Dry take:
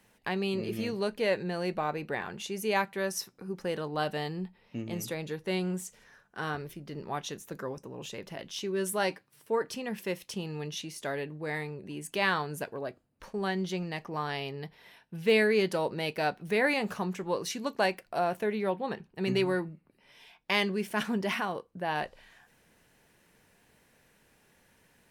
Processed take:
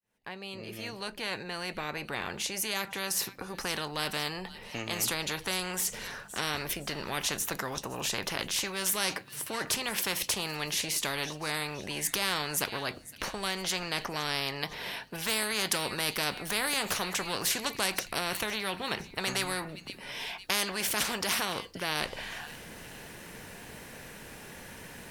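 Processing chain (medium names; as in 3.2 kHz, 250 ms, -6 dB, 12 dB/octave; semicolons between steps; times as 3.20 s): fade-in on the opening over 5.53 s; feedback echo behind a high-pass 512 ms, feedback 44%, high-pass 3.5 kHz, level -21 dB; spectrum-flattening compressor 4:1; trim +4 dB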